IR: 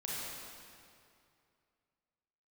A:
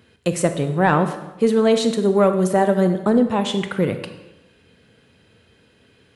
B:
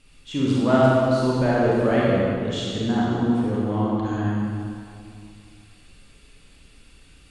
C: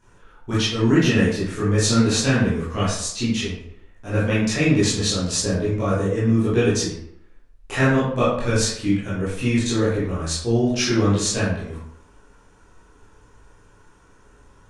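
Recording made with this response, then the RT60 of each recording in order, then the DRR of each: B; 0.95, 2.5, 0.70 seconds; 8.0, −7.0, −10.5 decibels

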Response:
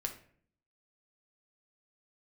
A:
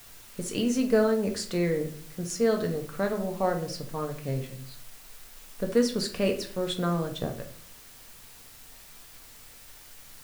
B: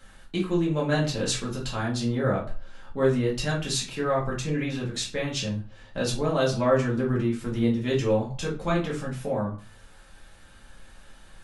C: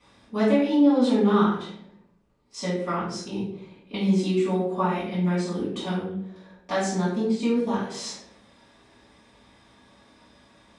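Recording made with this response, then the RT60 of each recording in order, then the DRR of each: A; 0.55, 0.40, 0.75 seconds; 3.5, −5.5, −10.5 decibels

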